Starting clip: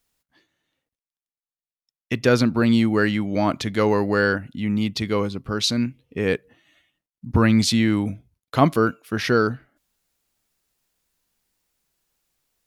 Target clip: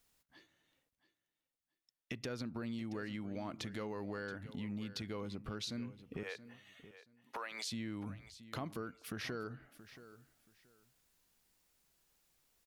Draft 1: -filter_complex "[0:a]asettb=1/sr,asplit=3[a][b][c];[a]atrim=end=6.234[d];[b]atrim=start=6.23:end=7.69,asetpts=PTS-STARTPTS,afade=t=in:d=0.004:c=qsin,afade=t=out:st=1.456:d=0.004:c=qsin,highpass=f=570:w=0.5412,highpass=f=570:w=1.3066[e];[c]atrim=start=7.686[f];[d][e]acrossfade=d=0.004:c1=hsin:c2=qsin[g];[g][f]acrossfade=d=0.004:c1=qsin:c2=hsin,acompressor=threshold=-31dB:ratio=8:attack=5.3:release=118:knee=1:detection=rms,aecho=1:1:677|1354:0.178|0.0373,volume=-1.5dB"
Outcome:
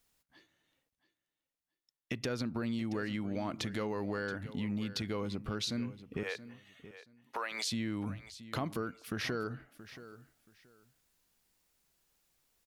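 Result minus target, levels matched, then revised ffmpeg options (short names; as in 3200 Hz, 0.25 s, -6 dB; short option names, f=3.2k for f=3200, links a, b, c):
compressor: peak gain reduction -6 dB
-filter_complex "[0:a]asettb=1/sr,asplit=3[a][b][c];[a]atrim=end=6.234[d];[b]atrim=start=6.23:end=7.69,asetpts=PTS-STARTPTS,afade=t=in:d=0.004:c=qsin,afade=t=out:st=1.456:d=0.004:c=qsin,highpass=f=570:w=0.5412,highpass=f=570:w=1.3066[e];[c]atrim=start=7.686[f];[d][e]acrossfade=d=0.004:c1=hsin:c2=qsin[g];[g][f]acrossfade=d=0.004:c1=qsin:c2=hsin,acompressor=threshold=-38dB:ratio=8:attack=5.3:release=118:knee=1:detection=rms,aecho=1:1:677|1354:0.178|0.0373,volume=-1.5dB"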